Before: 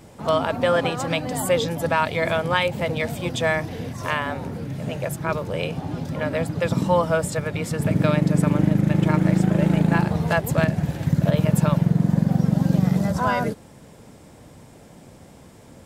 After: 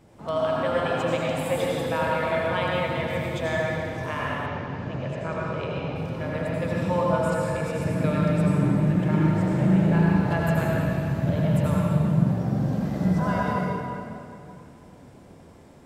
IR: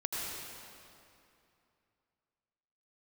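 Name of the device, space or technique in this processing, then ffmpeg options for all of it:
swimming-pool hall: -filter_complex "[1:a]atrim=start_sample=2205[link_01];[0:a][link_01]afir=irnorm=-1:irlink=0,highshelf=frequency=3900:gain=-7,asettb=1/sr,asplit=3[link_02][link_03][link_04];[link_02]atrim=end=4.464[link_05];[link_03]atrim=start=4.46:end=5.96,asetpts=PTS-STARTPTS,afade=type=in:duration=0.004:curve=qsin,afade=type=out:start_time=1.496:duration=0.004:curve=qsin,lowpass=frequency=6300:width=0.5412,lowpass=frequency=6300:width=1.3066[link_06];[link_04]atrim=start=5.956[link_07];[link_05][link_06]acrossfade=duration=0.004:curve1=hsin:curve2=qsin[link_08];[link_08][link_07]acrossfade=duration=0.004:curve1=qsin:curve2=hsin,volume=-7dB"

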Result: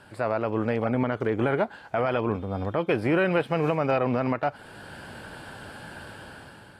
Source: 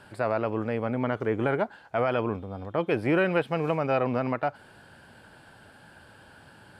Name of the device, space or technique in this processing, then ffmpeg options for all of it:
low-bitrate web radio: -af "dynaudnorm=framelen=210:gausssize=7:maxgain=10dB,alimiter=limit=-14dB:level=0:latency=1:release=483" -ar 32000 -c:a aac -b:a 48k

